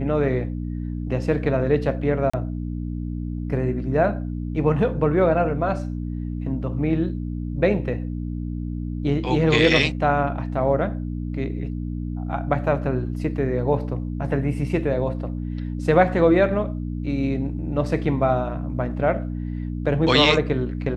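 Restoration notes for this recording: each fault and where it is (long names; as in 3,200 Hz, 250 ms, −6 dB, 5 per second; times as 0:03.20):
mains hum 60 Hz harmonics 5 −28 dBFS
0:02.30–0:02.33: drop-out 35 ms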